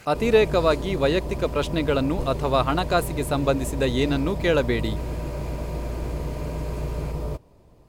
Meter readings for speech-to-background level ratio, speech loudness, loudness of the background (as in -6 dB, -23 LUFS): 7.5 dB, -23.5 LUFS, -31.0 LUFS